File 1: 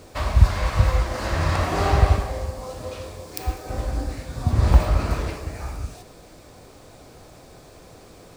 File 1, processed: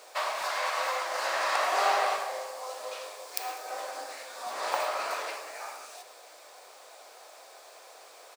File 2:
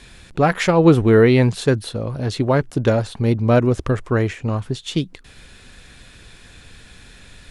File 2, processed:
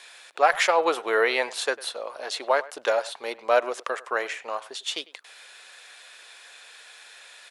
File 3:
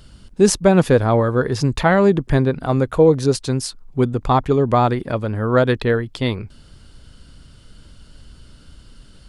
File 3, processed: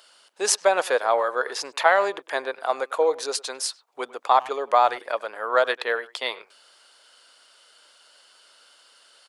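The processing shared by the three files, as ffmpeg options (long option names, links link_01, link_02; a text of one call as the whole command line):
ffmpeg -i in.wav -filter_complex "[0:a]highpass=frequency=590:width=0.5412,highpass=frequency=590:width=1.3066,asplit=2[link_01][link_02];[link_02]adelay=100,highpass=300,lowpass=3400,asoftclip=type=hard:threshold=-11.5dB,volume=-19dB[link_03];[link_01][link_03]amix=inputs=2:normalize=0" out.wav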